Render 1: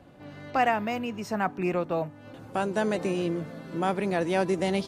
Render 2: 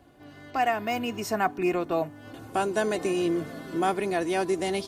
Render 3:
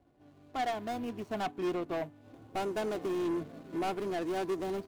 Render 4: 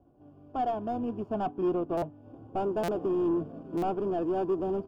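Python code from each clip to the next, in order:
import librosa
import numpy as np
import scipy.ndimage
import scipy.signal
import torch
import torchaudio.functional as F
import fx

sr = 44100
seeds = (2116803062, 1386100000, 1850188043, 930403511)

y1 = fx.high_shelf(x, sr, hz=7300.0, db=10.0)
y1 = y1 + 0.47 * np.pad(y1, (int(2.8 * sr / 1000.0), 0))[:len(y1)]
y1 = fx.rider(y1, sr, range_db=4, speed_s=0.5)
y2 = scipy.ndimage.median_filter(y1, 25, mode='constant')
y2 = 10.0 ** (-26.0 / 20.0) * np.tanh(y2 / 10.0 ** (-26.0 / 20.0))
y2 = fx.upward_expand(y2, sr, threshold_db=-45.0, expansion=1.5)
y2 = y2 * librosa.db_to_amplitude(-1.5)
y3 = scipy.signal.lfilter(np.full(22, 1.0 / 22), 1.0, y2)
y3 = fx.buffer_glitch(y3, sr, at_s=(1.97, 2.83, 3.77), block=256, repeats=8)
y3 = y3 * librosa.db_to_amplitude(5.5)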